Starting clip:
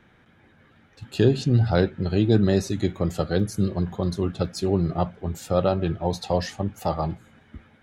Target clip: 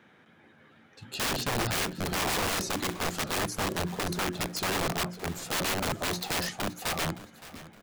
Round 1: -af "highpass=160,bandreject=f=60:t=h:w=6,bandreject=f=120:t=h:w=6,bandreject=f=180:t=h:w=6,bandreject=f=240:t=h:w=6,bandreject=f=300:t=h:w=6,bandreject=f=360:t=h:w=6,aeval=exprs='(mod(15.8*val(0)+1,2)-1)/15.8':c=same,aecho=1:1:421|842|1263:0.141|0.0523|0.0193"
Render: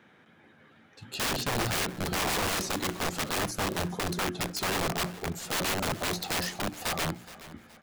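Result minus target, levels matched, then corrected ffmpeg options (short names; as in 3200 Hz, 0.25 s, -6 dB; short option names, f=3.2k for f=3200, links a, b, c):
echo 0.145 s early
-af "highpass=160,bandreject=f=60:t=h:w=6,bandreject=f=120:t=h:w=6,bandreject=f=180:t=h:w=6,bandreject=f=240:t=h:w=6,bandreject=f=300:t=h:w=6,bandreject=f=360:t=h:w=6,aeval=exprs='(mod(15.8*val(0)+1,2)-1)/15.8':c=same,aecho=1:1:566|1132|1698:0.141|0.0523|0.0193"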